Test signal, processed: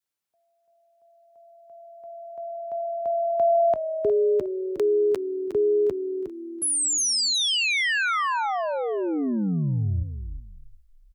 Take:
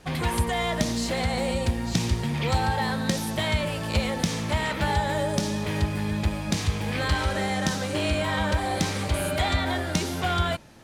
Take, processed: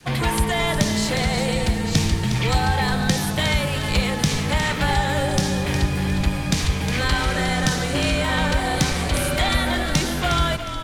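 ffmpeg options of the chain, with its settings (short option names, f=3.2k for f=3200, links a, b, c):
-filter_complex "[0:a]highpass=70,afreqshift=-21,asplit=5[a][b][c][d][e];[b]adelay=360,afreqshift=-40,volume=-9dB[f];[c]adelay=720,afreqshift=-80,volume=-18.6dB[g];[d]adelay=1080,afreqshift=-120,volume=-28.3dB[h];[e]adelay=1440,afreqshift=-160,volume=-37.9dB[i];[a][f][g][h][i]amix=inputs=5:normalize=0,adynamicequalizer=threshold=0.0112:dfrequency=580:dqfactor=0.82:tfrequency=580:tqfactor=0.82:attack=5:release=100:ratio=0.375:range=2:mode=cutabove:tftype=bell,volume=6dB"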